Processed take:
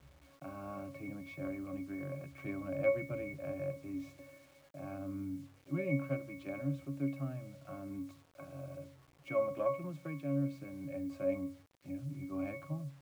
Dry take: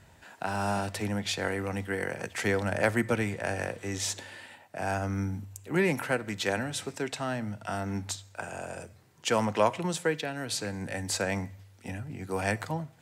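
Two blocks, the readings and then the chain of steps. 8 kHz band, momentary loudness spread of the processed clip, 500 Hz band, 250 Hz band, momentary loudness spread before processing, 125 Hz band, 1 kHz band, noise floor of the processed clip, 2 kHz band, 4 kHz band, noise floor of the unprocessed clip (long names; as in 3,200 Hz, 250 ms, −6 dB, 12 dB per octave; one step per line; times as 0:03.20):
below −25 dB, 14 LU, −7.0 dB, −5.5 dB, 12 LU, −7.0 dB, −15.5 dB, −64 dBFS, −15.5 dB, below −25 dB, −57 dBFS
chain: phase distortion by the signal itself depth 0.056 ms
resonances in every octave C#, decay 0.31 s
bit-depth reduction 12 bits, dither none
level +8 dB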